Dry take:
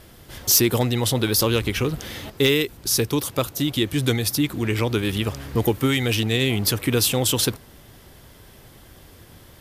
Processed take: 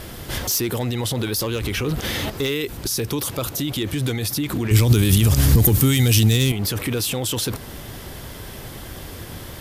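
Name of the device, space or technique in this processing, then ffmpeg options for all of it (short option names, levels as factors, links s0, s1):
loud club master: -filter_complex "[0:a]acompressor=threshold=0.0501:ratio=1.5,asoftclip=type=hard:threshold=0.178,alimiter=level_in=21.1:limit=0.891:release=50:level=0:latency=1,asettb=1/sr,asplit=3[s0][s1][s2];[s0]atrim=end=4.714[s3];[s1]atrim=start=4.71:end=6.52,asetpts=PTS-STARTPTS,afade=t=in:d=0.004:c=qsin,afade=t=out:st=1.806:d=0.004:c=qsin,bass=f=250:g=12,treble=f=4000:g=15[s4];[s2]atrim=start=6.516[s5];[s3][s4]acrossfade=d=0.004:c1=hsin:c2=qsin[s6];[s6][s5]acrossfade=d=0.004:c1=qsin:c2=hsin,volume=0.188"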